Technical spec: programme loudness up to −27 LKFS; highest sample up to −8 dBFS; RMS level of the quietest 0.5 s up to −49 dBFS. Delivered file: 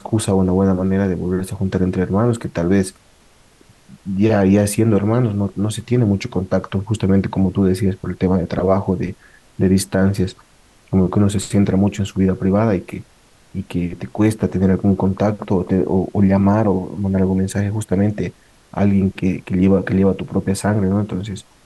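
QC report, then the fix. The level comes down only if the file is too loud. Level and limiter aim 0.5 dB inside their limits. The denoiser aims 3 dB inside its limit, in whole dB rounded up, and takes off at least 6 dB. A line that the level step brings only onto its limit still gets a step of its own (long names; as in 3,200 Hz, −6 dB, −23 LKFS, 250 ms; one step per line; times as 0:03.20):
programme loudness −18.0 LKFS: out of spec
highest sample −4.0 dBFS: out of spec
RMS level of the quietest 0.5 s −51 dBFS: in spec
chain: level −9.5 dB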